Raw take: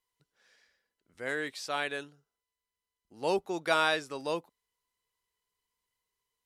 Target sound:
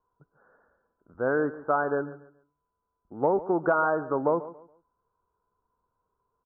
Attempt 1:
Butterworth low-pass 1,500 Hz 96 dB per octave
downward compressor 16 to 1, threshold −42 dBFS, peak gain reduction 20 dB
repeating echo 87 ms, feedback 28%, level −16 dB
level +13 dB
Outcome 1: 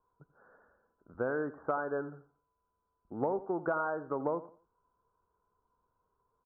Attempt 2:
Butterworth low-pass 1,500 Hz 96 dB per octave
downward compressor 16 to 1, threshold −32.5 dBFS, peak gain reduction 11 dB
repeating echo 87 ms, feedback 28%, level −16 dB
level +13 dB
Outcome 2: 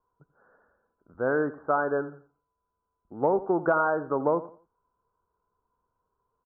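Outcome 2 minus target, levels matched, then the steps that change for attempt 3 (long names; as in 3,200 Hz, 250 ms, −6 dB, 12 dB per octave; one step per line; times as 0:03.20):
echo 53 ms early
change: repeating echo 140 ms, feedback 28%, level −16 dB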